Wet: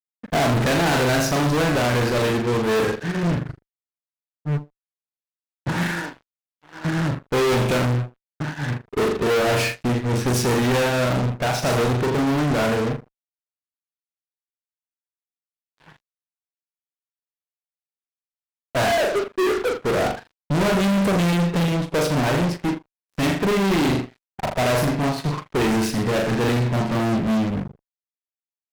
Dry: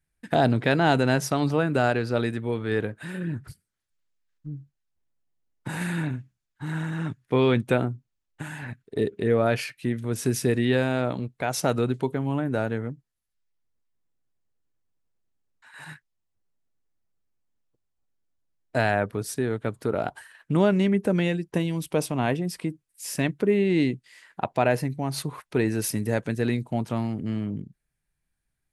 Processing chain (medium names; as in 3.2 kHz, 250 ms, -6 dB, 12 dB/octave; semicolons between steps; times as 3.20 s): 18.87–19.75 s: formants replaced by sine waves; in parallel at -9 dB: saturation -25 dBFS, distortion -7 dB; 5.83–6.85 s: on the sum: high-pass 530 Hz 12 dB/octave; on a send: flutter echo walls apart 7 m, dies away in 0.53 s; on the sum: level-controlled noise filter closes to 910 Hz, open at -14.5 dBFS; fuzz box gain 34 dB, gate -41 dBFS; upward expansion 2.5:1, over -25 dBFS; trim -4 dB